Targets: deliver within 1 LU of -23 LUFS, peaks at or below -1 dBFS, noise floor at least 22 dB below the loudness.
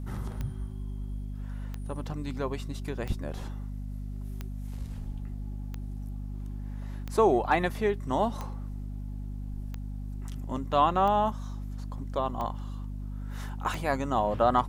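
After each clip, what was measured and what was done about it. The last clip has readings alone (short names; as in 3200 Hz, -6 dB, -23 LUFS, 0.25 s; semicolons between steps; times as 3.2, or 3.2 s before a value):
clicks 11; hum 50 Hz; harmonics up to 250 Hz; hum level -34 dBFS; loudness -32.0 LUFS; peak -11.0 dBFS; loudness target -23.0 LUFS
-> de-click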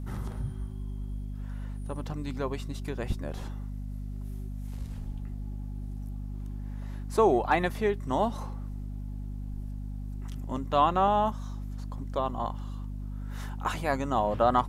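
clicks 0; hum 50 Hz; harmonics up to 250 Hz; hum level -34 dBFS
-> de-hum 50 Hz, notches 5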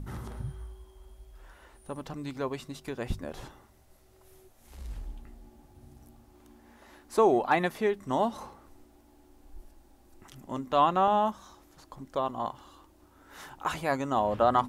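hum none; loudness -29.5 LUFS; peak -11.5 dBFS; loudness target -23.0 LUFS
-> gain +6.5 dB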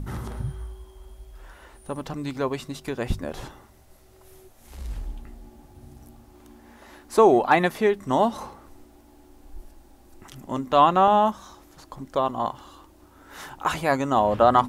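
loudness -23.0 LUFS; peak -5.0 dBFS; noise floor -53 dBFS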